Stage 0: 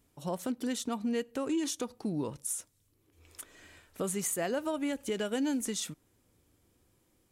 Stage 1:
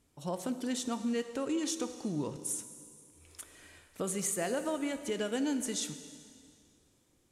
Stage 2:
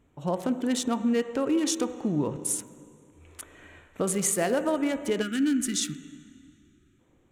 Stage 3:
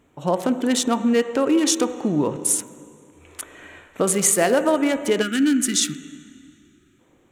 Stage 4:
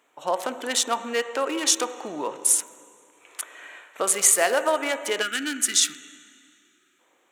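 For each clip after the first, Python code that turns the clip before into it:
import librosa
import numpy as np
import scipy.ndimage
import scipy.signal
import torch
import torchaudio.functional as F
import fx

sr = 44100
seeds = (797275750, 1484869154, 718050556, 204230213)

y1 = scipy.signal.sosfilt(scipy.signal.butter(2, 9100.0, 'lowpass', fs=sr, output='sos'), x)
y1 = fx.high_shelf(y1, sr, hz=7000.0, db=6.0)
y1 = fx.rev_plate(y1, sr, seeds[0], rt60_s=2.2, hf_ratio=1.0, predelay_ms=0, drr_db=9.0)
y1 = y1 * 10.0 ** (-1.5 / 20.0)
y2 = fx.wiener(y1, sr, points=9)
y2 = fx.spec_box(y2, sr, start_s=5.22, length_s=1.78, low_hz=390.0, high_hz=1200.0, gain_db=-20)
y2 = y2 * 10.0 ** (8.0 / 20.0)
y3 = fx.low_shelf(y2, sr, hz=140.0, db=-11.5)
y3 = y3 * 10.0 ** (8.5 / 20.0)
y4 = scipy.signal.sosfilt(scipy.signal.butter(2, 690.0, 'highpass', fs=sr, output='sos'), y3)
y4 = y4 * 10.0 ** (1.0 / 20.0)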